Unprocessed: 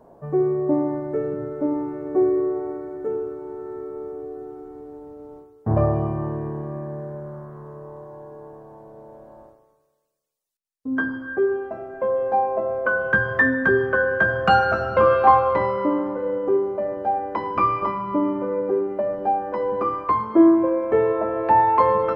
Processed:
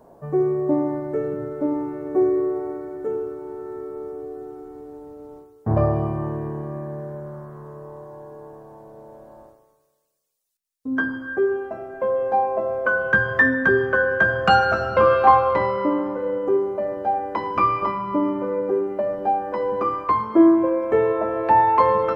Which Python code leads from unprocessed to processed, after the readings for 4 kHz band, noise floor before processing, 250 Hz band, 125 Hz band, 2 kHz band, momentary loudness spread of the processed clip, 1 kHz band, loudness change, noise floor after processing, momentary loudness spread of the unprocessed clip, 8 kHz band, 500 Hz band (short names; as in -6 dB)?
+3.5 dB, -62 dBFS, 0.0 dB, 0.0 dB, +1.5 dB, 20 LU, +0.5 dB, +0.5 dB, -62 dBFS, 19 LU, n/a, 0.0 dB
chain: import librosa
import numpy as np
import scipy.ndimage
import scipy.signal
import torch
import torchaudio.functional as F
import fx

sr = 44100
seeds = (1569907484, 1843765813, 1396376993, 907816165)

y = fx.high_shelf(x, sr, hz=3300.0, db=7.5)